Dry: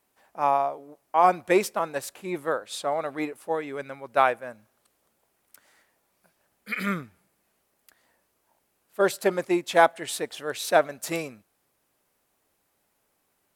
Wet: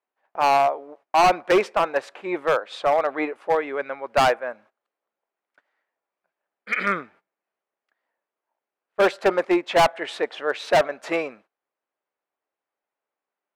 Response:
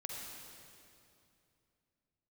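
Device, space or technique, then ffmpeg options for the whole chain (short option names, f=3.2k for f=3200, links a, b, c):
walkie-talkie: -af "highpass=420,lowpass=2.3k,asoftclip=type=hard:threshold=-22dB,agate=range=-20dB:threshold=-59dB:ratio=16:detection=peak,volume=9dB"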